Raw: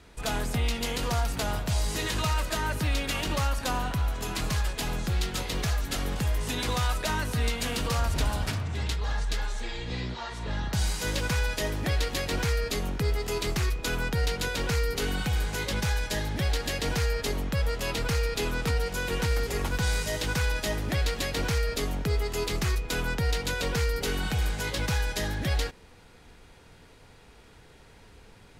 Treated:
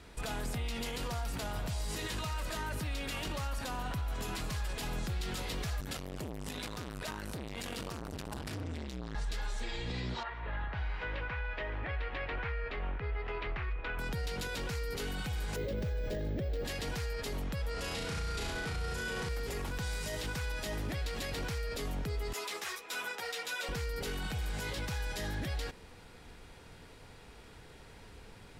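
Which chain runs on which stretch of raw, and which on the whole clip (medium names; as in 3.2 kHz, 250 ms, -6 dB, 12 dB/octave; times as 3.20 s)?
5.80–9.15 s: high-pass 47 Hz 24 dB/octave + transformer saturation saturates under 770 Hz
10.23–13.99 s: low-pass 2.4 kHz 24 dB/octave + peaking EQ 190 Hz -14.5 dB 2.5 oct
15.56–16.65 s: low-pass 2.4 kHz 6 dB/octave + resonant low shelf 700 Hz +7 dB, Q 3 + careless resampling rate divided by 2×, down none, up hold
17.71–19.29 s: low-pass 11 kHz 24 dB/octave + flutter echo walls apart 6 m, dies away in 1 s
22.33–23.69 s: high-pass 620 Hz + band-stop 4.5 kHz, Q 13 + three-phase chorus
whole clip: band-stop 6.4 kHz, Q 27; peak limiter -29 dBFS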